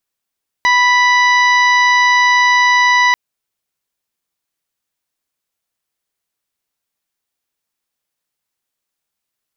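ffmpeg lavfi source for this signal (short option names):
-f lavfi -i "aevalsrc='0.251*sin(2*PI*986*t)+0.282*sin(2*PI*1972*t)+0.0473*sin(2*PI*2958*t)+0.0794*sin(2*PI*3944*t)+0.0398*sin(2*PI*4930*t)+0.0355*sin(2*PI*5916*t)':d=2.49:s=44100"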